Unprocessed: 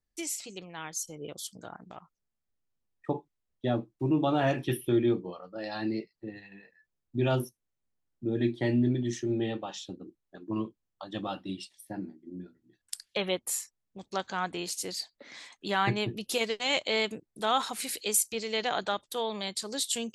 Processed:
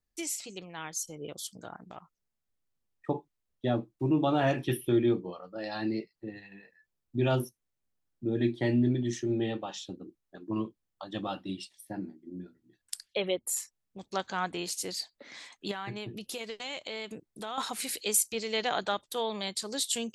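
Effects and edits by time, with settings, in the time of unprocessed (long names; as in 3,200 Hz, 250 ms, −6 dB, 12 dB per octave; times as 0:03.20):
0:13.07–0:13.57: spectral envelope exaggerated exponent 1.5
0:15.71–0:17.58: downward compressor 3 to 1, threshold −37 dBFS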